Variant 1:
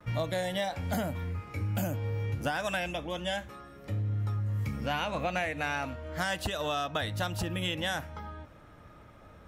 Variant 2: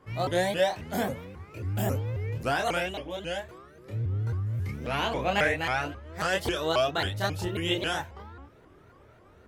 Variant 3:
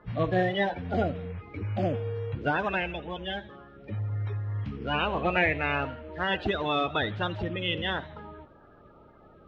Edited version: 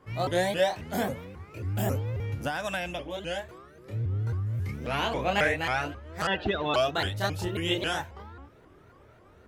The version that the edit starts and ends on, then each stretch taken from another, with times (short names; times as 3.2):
2
2.2–2.99 from 1
6.27–6.74 from 3